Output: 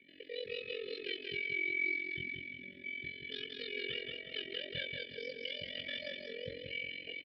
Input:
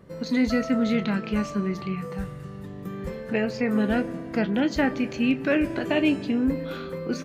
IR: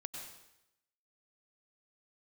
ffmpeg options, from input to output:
-filter_complex "[0:a]equalizer=f=1100:t=o:w=1.7:g=9.5,aecho=1:1:3.3:0.87,asubboost=boost=3.5:cutoff=82,acrossover=split=130|2300[s0][s1][s2];[s2]aeval=exprs='(mod(15*val(0)+1,2)-1)/15':c=same[s3];[s0][s1][s3]amix=inputs=3:normalize=0,asetrate=85689,aresample=44100,atempo=0.514651,tremolo=f=44:d=0.857,asplit=3[s4][s5][s6];[s4]bandpass=f=270:t=q:w=8,volume=1[s7];[s5]bandpass=f=2290:t=q:w=8,volume=0.501[s8];[s6]bandpass=f=3010:t=q:w=8,volume=0.355[s9];[s7][s8][s9]amix=inputs=3:normalize=0,alimiter=level_in=1.68:limit=0.0631:level=0:latency=1:release=239,volume=0.596,asuperstop=centerf=1000:order=8:qfactor=1.2,asplit=2[s10][s11];[s11]aecho=0:1:181|362|543|724|905:0.631|0.265|0.111|0.0467|0.0196[s12];[s10][s12]amix=inputs=2:normalize=0,aresample=11025,aresample=44100"

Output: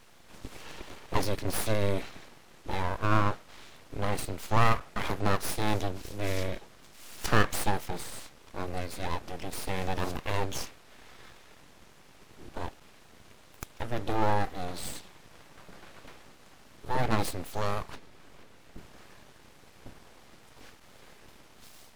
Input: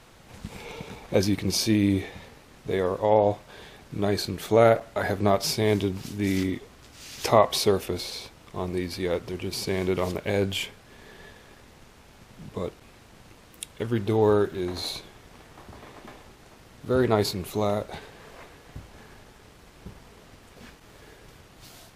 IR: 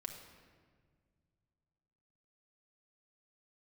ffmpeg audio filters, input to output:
-filter_complex "[0:a]aeval=exprs='abs(val(0))':c=same,asettb=1/sr,asplit=3[s0][s1][s2];[s0]atrim=end=17.954[s3];[s1]atrim=start=17.95:end=18.78,asetpts=PTS-STARTPTS,afade=t=in:d=0.004:c=qsin,afade=t=out:st=0.826:d=0.004:c=qsin,acrossover=split=480[s4][s5];[s5]acompressor=threshold=0.00178:ratio=3[s6];[s4][s6]amix=inputs=2:normalize=0[s7];[s2]atrim=start=18.776[s8];[s3][s7]acrossfade=d=0.004:c1=hsin:c2=qsin[s9];[s9][s8]acrossfade=d=0.004:c1=qsin:c2=hsin,volume=0.75"

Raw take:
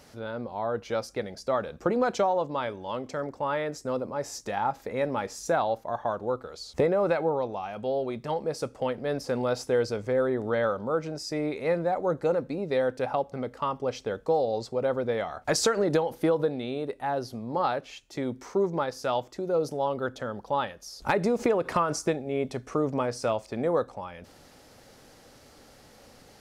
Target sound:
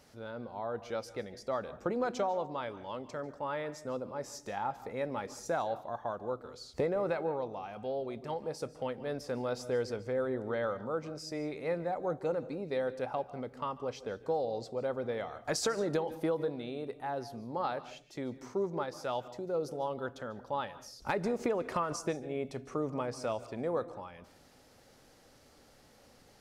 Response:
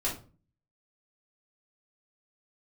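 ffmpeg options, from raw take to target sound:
-filter_complex "[0:a]asplit=2[s0][s1];[1:a]atrim=start_sample=2205,adelay=142[s2];[s1][s2]afir=irnorm=-1:irlink=0,volume=0.0841[s3];[s0][s3]amix=inputs=2:normalize=0,volume=0.422"

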